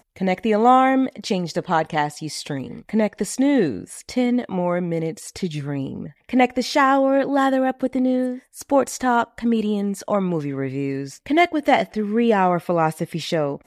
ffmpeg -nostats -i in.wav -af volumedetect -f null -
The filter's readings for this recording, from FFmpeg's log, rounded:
mean_volume: -20.8 dB
max_volume: -3.1 dB